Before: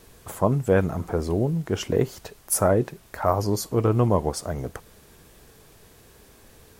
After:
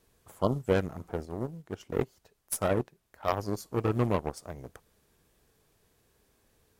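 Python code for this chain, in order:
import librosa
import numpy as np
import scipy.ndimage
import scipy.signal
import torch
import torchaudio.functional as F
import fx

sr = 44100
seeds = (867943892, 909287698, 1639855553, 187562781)

y = fx.cheby_harmonics(x, sr, harmonics=(5, 6, 7, 8), levels_db=(-15, -16, -13, -21), full_scale_db=-6.0)
y = fx.spec_repair(y, sr, seeds[0], start_s=0.37, length_s=0.22, low_hz=1400.0, high_hz=2900.0, source='both')
y = fx.upward_expand(y, sr, threshold_db=-29.0, expansion=1.5, at=(1.25, 3.28))
y = F.gain(torch.from_numpy(y), -6.5).numpy()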